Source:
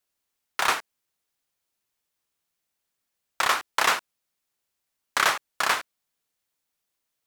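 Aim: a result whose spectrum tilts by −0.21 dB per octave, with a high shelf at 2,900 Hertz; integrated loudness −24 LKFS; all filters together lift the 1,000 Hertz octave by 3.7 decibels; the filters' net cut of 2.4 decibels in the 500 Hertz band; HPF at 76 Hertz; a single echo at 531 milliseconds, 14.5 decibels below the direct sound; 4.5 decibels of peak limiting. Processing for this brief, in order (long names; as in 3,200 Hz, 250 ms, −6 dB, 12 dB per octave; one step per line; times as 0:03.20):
high-pass filter 76 Hz
parametric band 500 Hz −6 dB
parametric band 1,000 Hz +7 dB
high-shelf EQ 2,900 Hz −8 dB
brickwall limiter −9.5 dBFS
single-tap delay 531 ms −14.5 dB
level +1.5 dB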